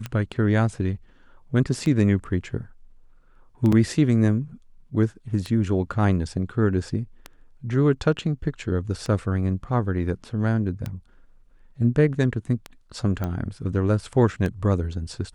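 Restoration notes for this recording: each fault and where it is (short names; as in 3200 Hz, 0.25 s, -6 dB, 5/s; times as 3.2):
tick 33 1/3 rpm -16 dBFS
3.72 gap 4.9 ms
13.24 pop -16 dBFS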